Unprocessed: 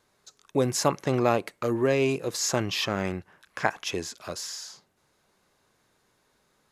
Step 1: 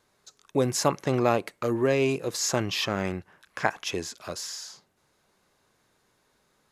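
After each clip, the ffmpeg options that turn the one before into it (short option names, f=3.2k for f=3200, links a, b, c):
-af anull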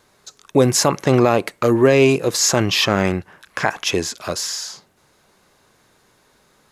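-af "alimiter=level_in=12dB:limit=-1dB:release=50:level=0:latency=1,volume=-1dB"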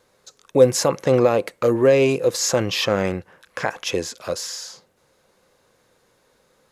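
-af "equalizer=f=510:w=6.4:g=12.5,volume=-5.5dB"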